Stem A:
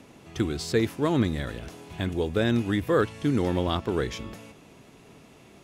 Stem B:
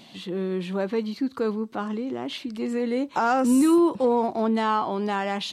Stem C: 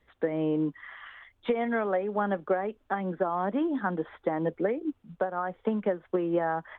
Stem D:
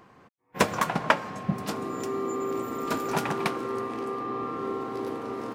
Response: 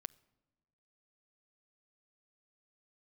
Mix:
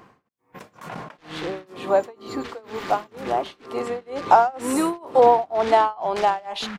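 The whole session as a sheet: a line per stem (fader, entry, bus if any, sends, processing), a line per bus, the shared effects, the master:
-14.5 dB, 1.90 s, no bus, no send, none
+0.5 dB, 1.15 s, no bus, send -4.5 dB, high-pass 480 Hz 12 dB/octave; peaking EQ 700 Hz +14.5 dB 1 oct
+1.5 dB, 0.95 s, bus A, send -11 dB, steep low-pass 540 Hz 72 dB/octave; delay time shaken by noise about 1.4 kHz, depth 0.4 ms
-0.5 dB, 0.00 s, bus A, send -11.5 dB, none
bus A: 0.0 dB, compressor with a negative ratio -33 dBFS, ratio -1; peak limiter -26.5 dBFS, peak gain reduction 9.5 dB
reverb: on, RT60 1.2 s, pre-delay 7 ms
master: tremolo 2.1 Hz, depth 97%

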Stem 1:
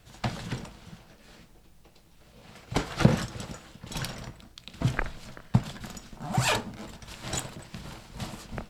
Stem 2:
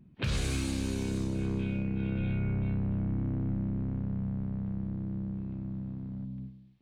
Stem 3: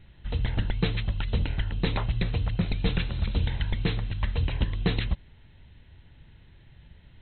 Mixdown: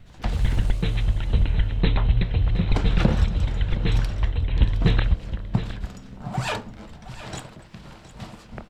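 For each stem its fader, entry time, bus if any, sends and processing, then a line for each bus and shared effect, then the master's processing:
-0.5 dB, 0.00 s, no send, echo send -14.5 dB, low-pass 3.3 kHz 6 dB/octave
-17.5 dB, 0.00 s, no send, echo send -14 dB, peak limiter -24.5 dBFS, peak gain reduction 4 dB; sine folder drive 11 dB, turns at -24.5 dBFS
+2.5 dB, 0.00 s, no send, echo send -11.5 dB, bass shelf 100 Hz +9 dB; random flutter of the level, depth 65%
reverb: none
echo: delay 716 ms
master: none

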